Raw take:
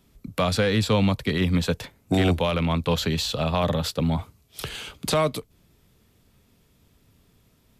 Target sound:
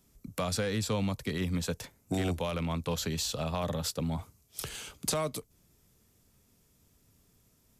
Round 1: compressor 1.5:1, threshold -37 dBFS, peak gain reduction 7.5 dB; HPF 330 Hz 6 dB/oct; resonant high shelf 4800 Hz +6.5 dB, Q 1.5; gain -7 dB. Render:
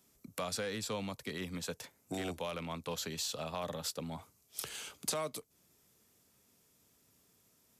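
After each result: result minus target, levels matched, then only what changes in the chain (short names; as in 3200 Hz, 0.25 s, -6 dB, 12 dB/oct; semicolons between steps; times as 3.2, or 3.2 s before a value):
compressor: peak gain reduction +4 dB; 250 Hz band -3.0 dB
change: compressor 1.5:1, threshold -25 dBFS, peak gain reduction 3.5 dB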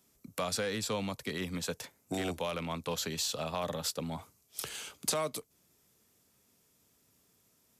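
250 Hz band -3.0 dB
remove: HPF 330 Hz 6 dB/oct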